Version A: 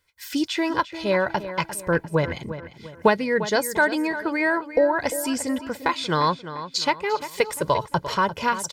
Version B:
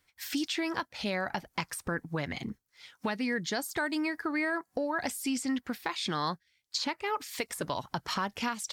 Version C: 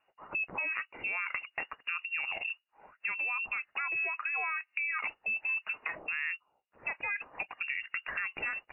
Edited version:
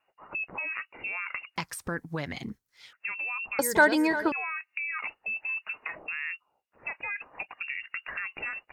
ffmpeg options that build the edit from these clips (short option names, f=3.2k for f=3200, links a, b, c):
-filter_complex "[2:a]asplit=3[a][b][c];[a]atrim=end=1.562[d];[1:a]atrim=start=1.558:end=2.932[e];[b]atrim=start=2.928:end=3.592[f];[0:a]atrim=start=3.588:end=4.322[g];[c]atrim=start=4.318[h];[d][e]acrossfade=d=0.004:c1=hsin:c2=hsin[i];[i][f]acrossfade=d=0.004:c1=hsin:c2=hsin[j];[j][g]acrossfade=d=0.004:c1=hsin:c2=hsin[k];[k][h]acrossfade=d=0.004:c1=hsin:c2=hsin"